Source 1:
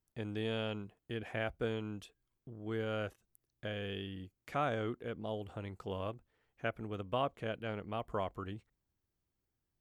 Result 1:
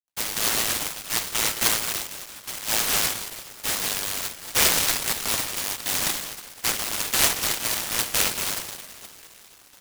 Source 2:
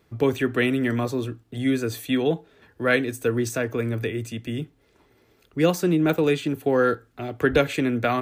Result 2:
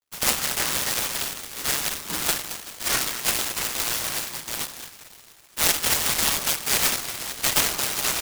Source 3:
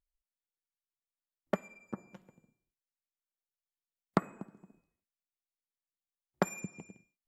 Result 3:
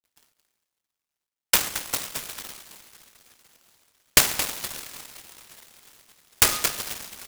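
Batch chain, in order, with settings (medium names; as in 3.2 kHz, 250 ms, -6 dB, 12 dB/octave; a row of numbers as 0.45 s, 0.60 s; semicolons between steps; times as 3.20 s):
frequency shift +61 Hz; reverse; upward compressor, threshold -41 dBFS; reverse; bit crusher 9-bit; on a send: delay 222 ms -12 dB; on the sum: two-slope reverb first 0.47 s, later 4.8 s, from -18 dB, DRR 1 dB; level-controlled noise filter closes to 530 Hz, open at -22.5 dBFS; frequency inversion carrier 3.7 kHz; delay time shaken by noise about 3.7 kHz, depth 0.12 ms; normalise loudness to -23 LUFS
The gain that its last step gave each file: +11.5 dB, -4.5 dB, +11.0 dB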